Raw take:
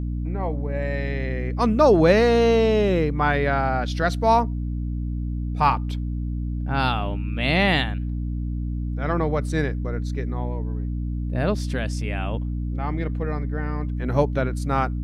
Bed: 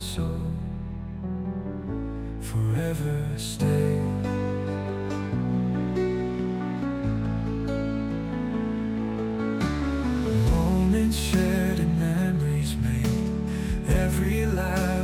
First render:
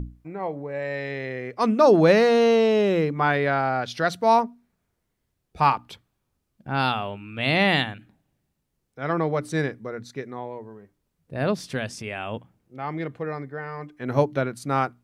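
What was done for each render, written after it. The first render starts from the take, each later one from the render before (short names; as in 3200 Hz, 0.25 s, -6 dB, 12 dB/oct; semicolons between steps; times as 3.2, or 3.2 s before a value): notches 60/120/180/240/300 Hz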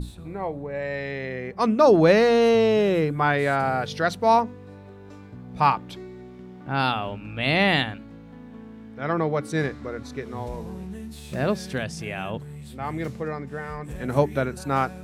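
add bed -14.5 dB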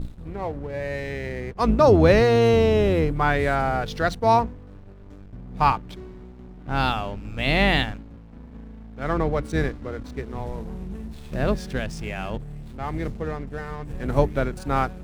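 octaver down 2 oct, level 0 dB; backlash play -38 dBFS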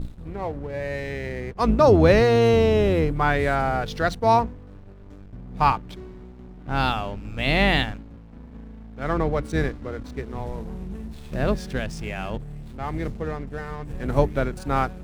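nothing audible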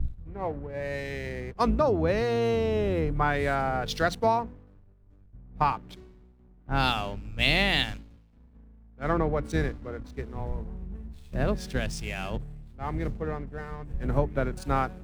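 compressor 16:1, threshold -22 dBFS, peak gain reduction 12.5 dB; three-band expander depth 100%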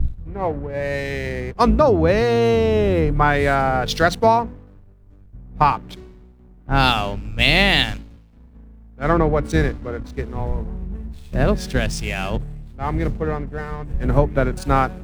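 gain +9 dB; limiter -1 dBFS, peak gain reduction 2 dB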